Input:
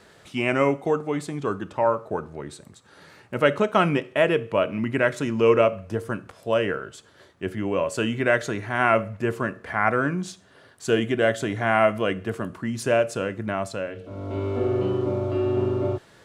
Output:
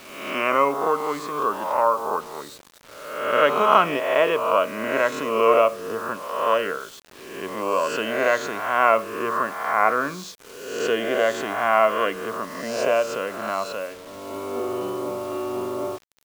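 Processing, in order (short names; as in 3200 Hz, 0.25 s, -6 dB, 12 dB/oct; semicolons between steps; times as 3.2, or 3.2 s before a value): spectral swells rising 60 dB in 1.02 s; speaker cabinet 310–6900 Hz, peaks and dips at 340 Hz -5 dB, 1100 Hz +9 dB, 1700 Hz -4 dB; bit-crush 7-bit; gain -1 dB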